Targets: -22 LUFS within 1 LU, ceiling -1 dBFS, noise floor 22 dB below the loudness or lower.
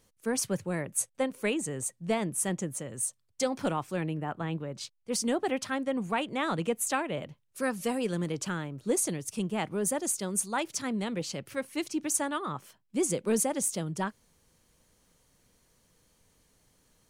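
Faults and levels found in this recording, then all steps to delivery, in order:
loudness -31.5 LUFS; peak level -14.5 dBFS; loudness target -22.0 LUFS
-> trim +9.5 dB

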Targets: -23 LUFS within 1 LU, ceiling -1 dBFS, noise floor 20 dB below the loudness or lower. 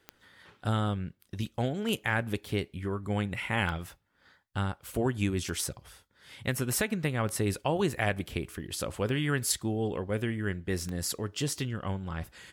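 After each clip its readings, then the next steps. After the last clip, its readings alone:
clicks found 7; loudness -32.0 LUFS; peak level -14.0 dBFS; loudness target -23.0 LUFS
-> de-click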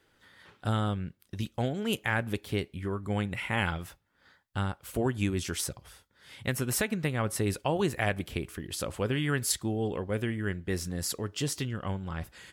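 clicks found 0; loudness -32.0 LUFS; peak level -14.0 dBFS; loudness target -23.0 LUFS
-> trim +9 dB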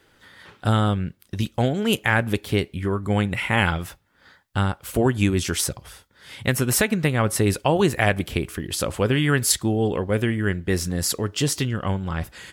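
loudness -23.0 LUFS; peak level -5.0 dBFS; noise floor -60 dBFS

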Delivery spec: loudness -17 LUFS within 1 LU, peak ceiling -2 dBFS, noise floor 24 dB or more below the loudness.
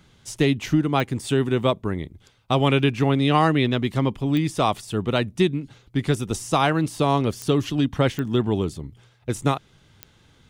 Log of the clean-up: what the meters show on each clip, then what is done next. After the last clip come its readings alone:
clicks found 5; loudness -22.5 LUFS; peak level -5.5 dBFS; loudness target -17.0 LUFS
-> de-click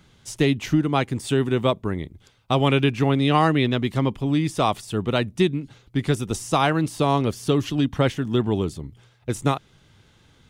clicks found 0; loudness -22.5 LUFS; peak level -5.5 dBFS; loudness target -17.0 LUFS
-> trim +5.5 dB; peak limiter -2 dBFS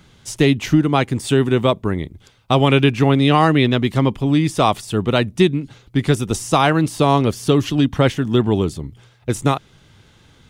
loudness -17.5 LUFS; peak level -2.0 dBFS; noise floor -52 dBFS

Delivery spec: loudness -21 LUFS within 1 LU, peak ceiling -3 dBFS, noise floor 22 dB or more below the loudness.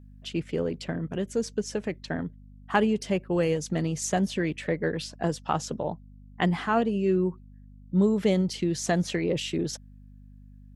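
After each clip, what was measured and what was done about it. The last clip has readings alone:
hum 50 Hz; highest harmonic 250 Hz; hum level -46 dBFS; loudness -28.0 LUFS; peak level -8.5 dBFS; loudness target -21.0 LUFS
-> de-hum 50 Hz, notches 5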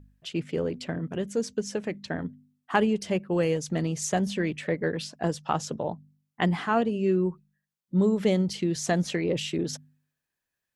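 hum not found; loudness -28.0 LUFS; peak level -8.5 dBFS; loudness target -21.0 LUFS
-> trim +7 dB; peak limiter -3 dBFS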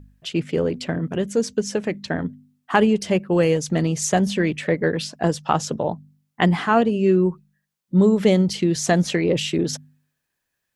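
loudness -21.0 LUFS; peak level -3.0 dBFS; noise floor -79 dBFS

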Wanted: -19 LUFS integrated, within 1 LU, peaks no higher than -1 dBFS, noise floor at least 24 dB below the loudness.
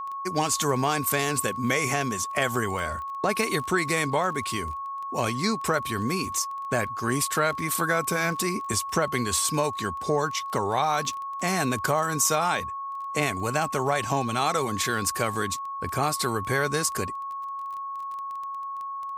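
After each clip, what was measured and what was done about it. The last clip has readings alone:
tick rate 20 per s; steady tone 1.1 kHz; tone level -31 dBFS; loudness -26.5 LUFS; peak level -9.0 dBFS; loudness target -19.0 LUFS
-> de-click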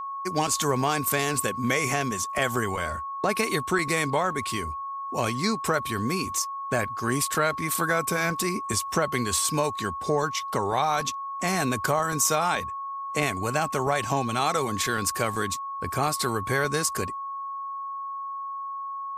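tick rate 0.052 per s; steady tone 1.1 kHz; tone level -31 dBFS
-> band-stop 1.1 kHz, Q 30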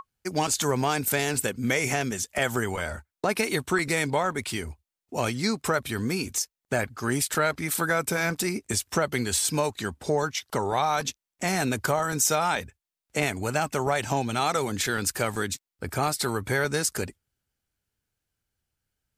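steady tone not found; loudness -27.0 LUFS; peak level -9.5 dBFS; loudness target -19.0 LUFS
-> trim +8 dB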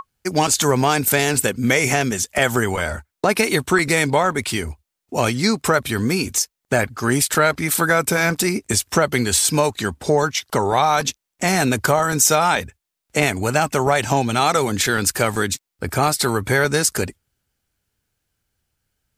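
loudness -19.0 LUFS; peak level -1.5 dBFS; noise floor -82 dBFS

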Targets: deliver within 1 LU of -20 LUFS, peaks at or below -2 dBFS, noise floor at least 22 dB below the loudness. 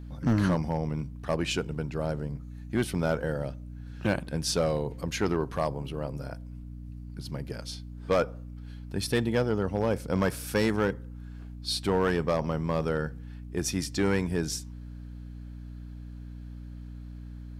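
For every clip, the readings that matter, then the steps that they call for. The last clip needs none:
clipped samples 0.6%; clipping level -18.0 dBFS; hum 60 Hz; highest harmonic 300 Hz; hum level -39 dBFS; loudness -30.0 LUFS; peak level -18.0 dBFS; loudness target -20.0 LUFS
-> clip repair -18 dBFS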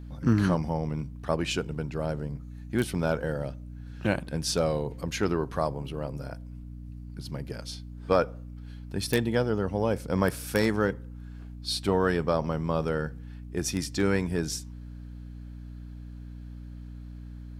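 clipped samples 0.0%; hum 60 Hz; highest harmonic 300 Hz; hum level -39 dBFS
-> hum notches 60/120/180/240/300 Hz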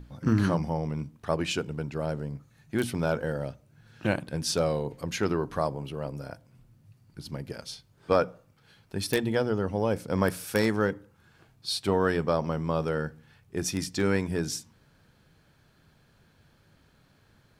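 hum not found; loudness -29.5 LUFS; peak level -9.0 dBFS; loudness target -20.0 LUFS
-> trim +9.5 dB; peak limiter -2 dBFS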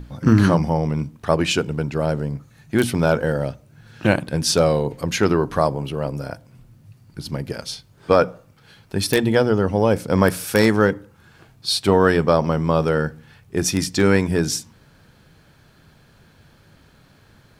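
loudness -20.0 LUFS; peak level -2.0 dBFS; noise floor -53 dBFS

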